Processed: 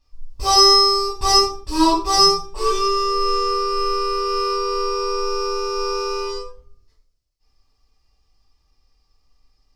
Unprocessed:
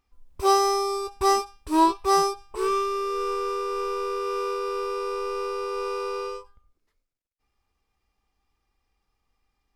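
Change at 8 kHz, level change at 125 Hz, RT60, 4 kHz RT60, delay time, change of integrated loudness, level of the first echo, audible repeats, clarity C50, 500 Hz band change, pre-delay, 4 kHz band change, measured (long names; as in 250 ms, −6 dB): +10.5 dB, can't be measured, 0.45 s, 0.25 s, no echo audible, +8.0 dB, no echo audible, no echo audible, 5.0 dB, +4.0 dB, 6 ms, +18.5 dB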